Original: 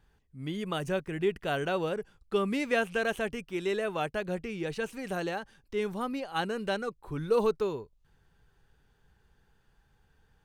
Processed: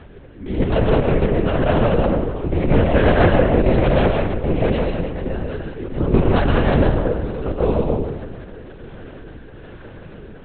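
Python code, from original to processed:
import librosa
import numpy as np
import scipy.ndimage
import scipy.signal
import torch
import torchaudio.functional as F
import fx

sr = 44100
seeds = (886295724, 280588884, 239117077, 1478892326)

p1 = fx.bin_compress(x, sr, power=0.6)
p2 = fx.peak_eq(p1, sr, hz=230.0, db=14.0, octaves=1.5)
p3 = fx.hum_notches(p2, sr, base_hz=50, count=9)
p4 = fx.auto_swell(p3, sr, attack_ms=453.0)
p5 = fx.rotary(p4, sr, hz=1.2)
p6 = fx.cheby_harmonics(p5, sr, harmonics=(2, 6), levels_db=(-6, -20), full_scale_db=-9.0)
p7 = p6 + fx.echo_feedback(p6, sr, ms=304, feedback_pct=58, wet_db=-18, dry=0)
p8 = fx.rev_freeverb(p7, sr, rt60_s=1.0, hf_ratio=0.6, predelay_ms=85, drr_db=0.0)
p9 = fx.lpc_vocoder(p8, sr, seeds[0], excitation='whisper', order=8)
y = F.gain(torch.from_numpy(p9), 6.0).numpy()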